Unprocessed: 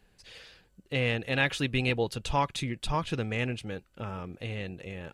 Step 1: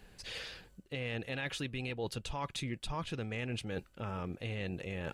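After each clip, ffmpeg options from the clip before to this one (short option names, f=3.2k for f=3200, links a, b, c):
-af "alimiter=limit=-21.5dB:level=0:latency=1:release=121,areverse,acompressor=threshold=-42dB:ratio=6,areverse,volume=6.5dB"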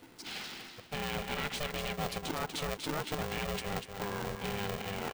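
-af "aecho=1:1:242|484|726:0.447|0.116|0.0302,aeval=exprs='val(0)*sgn(sin(2*PI*300*n/s))':c=same,volume=1.5dB"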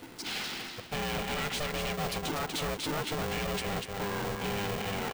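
-af "asoftclip=type=tanh:threshold=-37dB,volume=8dB"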